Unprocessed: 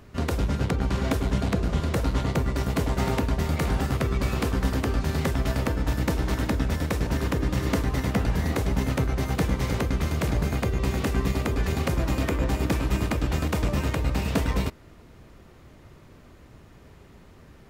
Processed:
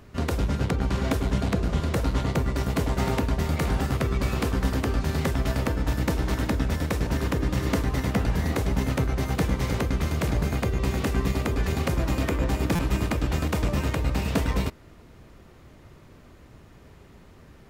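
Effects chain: stuck buffer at 12.75, samples 256, times 6

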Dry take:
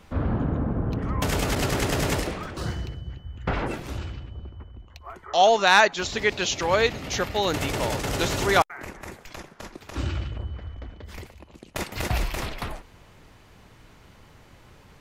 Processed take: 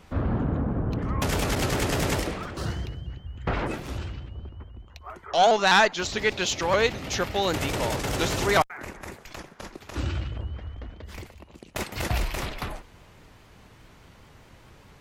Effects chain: one diode to ground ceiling -11.5 dBFS; shaped vibrato saw up 4.9 Hz, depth 100 cents

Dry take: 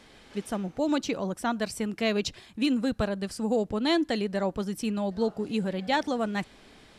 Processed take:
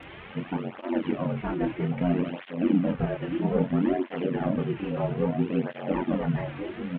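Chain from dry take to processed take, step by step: delta modulation 16 kbps, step -39 dBFS; in parallel at -8 dB: soft clip -29.5 dBFS, distortion -9 dB; on the sum: doubler 28 ms -4 dB; delay with a stepping band-pass 0.698 s, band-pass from 230 Hz, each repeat 1.4 oct, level -3 dB; ring modulator 45 Hz; tape flanging out of phase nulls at 0.61 Hz, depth 4.9 ms; gain +3.5 dB

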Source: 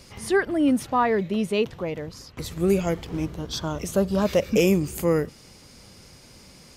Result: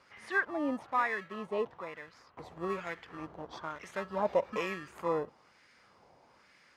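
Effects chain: low shelf 94 Hz +7 dB; in parallel at -8 dB: sample-rate reducer 1500 Hz, jitter 0%; on the sum: LFO band-pass sine 1.1 Hz 780–1800 Hz; gain -1.5 dB

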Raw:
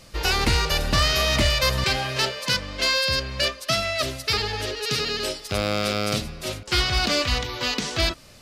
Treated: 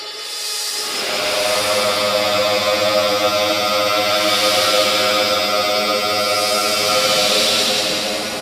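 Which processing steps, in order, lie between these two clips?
HPF 490 Hz 12 dB/oct; high shelf 10000 Hz -5 dB; notch 6300 Hz, Q 15; in parallel at -1 dB: limiter -20 dBFS, peak gain reduction 9 dB; on the sum: hard clip -20.5 dBFS, distortion -9 dB; Paulstretch 9.6×, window 0.10 s, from 5.4; on a send: split-band echo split 1000 Hz, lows 0.741 s, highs 0.189 s, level -3.5 dB; on the sum: downsampling 32000 Hz; gain +8 dB

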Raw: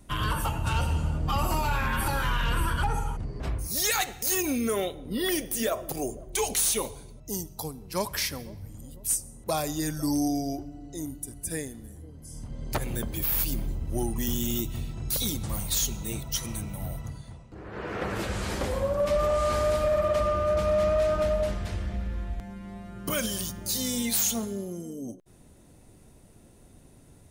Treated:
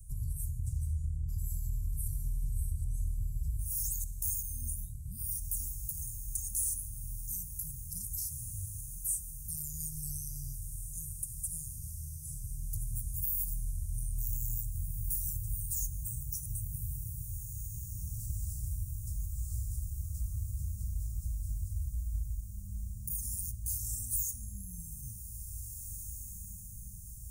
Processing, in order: inverse Chebyshev band-stop 290–3400 Hz, stop band 50 dB; compressor 2:1, threshold -45 dBFS, peak gain reduction 12 dB; on a send: diffused feedback echo 1.95 s, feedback 59%, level -8 dB; on the sum: gain +5 dB

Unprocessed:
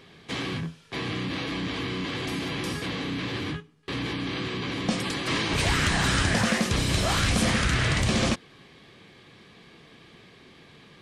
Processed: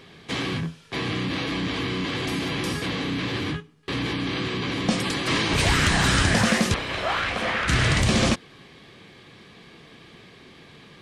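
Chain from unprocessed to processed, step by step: 6.74–7.68 three-band isolator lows -16 dB, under 420 Hz, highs -21 dB, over 3300 Hz; gain +3.5 dB

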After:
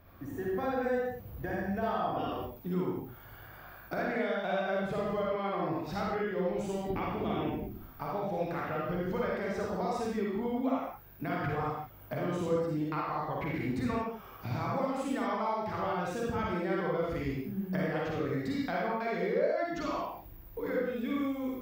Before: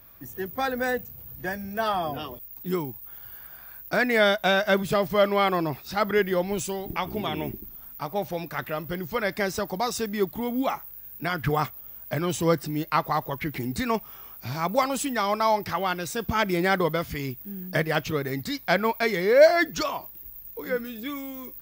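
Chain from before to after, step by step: compressor 6:1, threshold -34 dBFS, peak gain reduction 21.5 dB; LPF 1300 Hz 6 dB/oct; reverb, pre-delay 41 ms, DRR -4.5 dB

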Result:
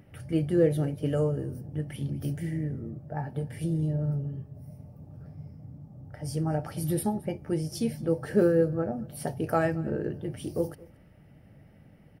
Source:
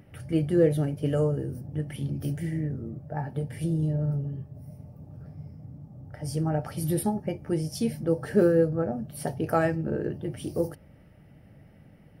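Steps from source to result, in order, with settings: echo 0.221 s -22.5 dB; gain -1.5 dB

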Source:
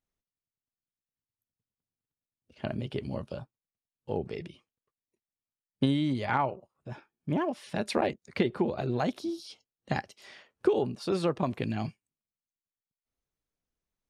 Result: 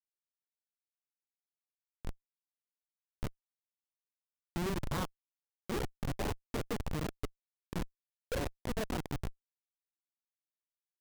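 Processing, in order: Wiener smoothing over 25 samples; dynamic EQ 110 Hz, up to +7 dB, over -53 dBFS, Q 6.5; varispeed +28%; grains 0.147 s, grains 19/s, spray 22 ms; LPF 1600 Hz 24 dB/oct; Schmitt trigger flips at -28.5 dBFS; gain +3 dB

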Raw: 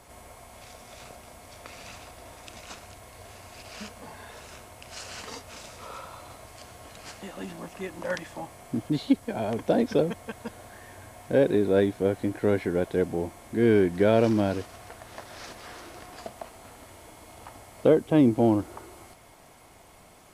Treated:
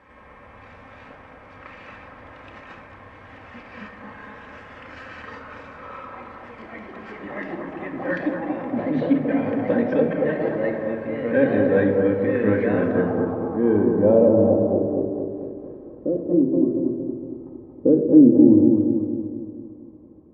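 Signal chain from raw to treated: notch comb 700 Hz; echoes that change speed 0.15 s, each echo +2 st, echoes 3, each echo -6 dB; low-pass sweep 1900 Hz -> 360 Hz, 12.59–15.18; analogue delay 0.23 s, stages 2048, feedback 53%, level -4 dB; shoebox room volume 2600 m³, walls furnished, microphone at 2.1 m; gain -1 dB

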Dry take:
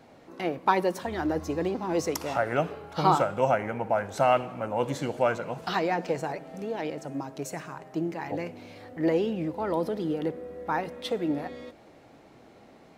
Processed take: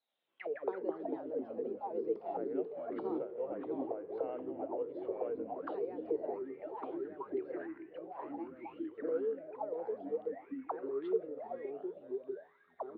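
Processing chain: low-pass opened by the level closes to 1100 Hz, open at -23 dBFS; bell 3400 Hz +6.5 dB 1.7 oct; auto-wah 450–4100 Hz, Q 18, down, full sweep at -24.5 dBFS; downsampling 11025 Hz; echoes that change speed 83 ms, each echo -3 st, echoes 3; gain +1 dB

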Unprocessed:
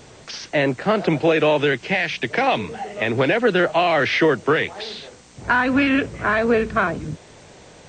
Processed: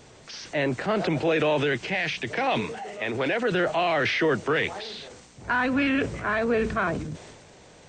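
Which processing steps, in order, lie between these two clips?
2.61–3.52 low shelf 200 Hz -9 dB; transient shaper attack -2 dB, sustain +7 dB; gain -6 dB

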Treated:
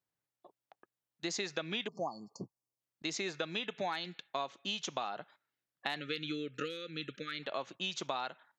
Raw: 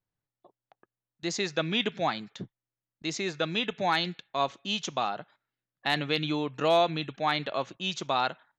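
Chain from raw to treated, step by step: HPF 270 Hz 6 dB/oct; compressor 10:1, threshold -33 dBFS, peak gain reduction 14 dB; 1.87–2.8 spectral delete 1200–4300 Hz; 6–7.43 brick-wall FIR band-stop 580–1200 Hz

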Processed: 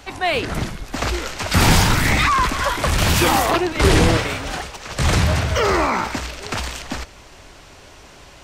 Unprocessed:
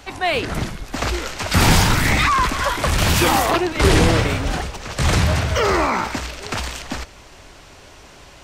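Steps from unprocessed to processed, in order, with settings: 4.17–4.91 low shelf 370 Hz -9 dB

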